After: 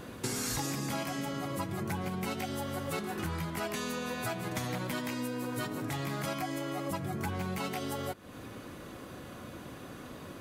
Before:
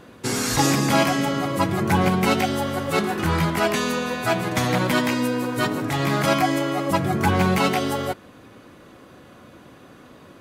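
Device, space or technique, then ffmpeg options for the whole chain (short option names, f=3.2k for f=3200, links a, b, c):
ASMR close-microphone chain: -af "lowshelf=f=120:g=5.5,acompressor=threshold=-34dB:ratio=6,highshelf=f=7.1k:g=7.5"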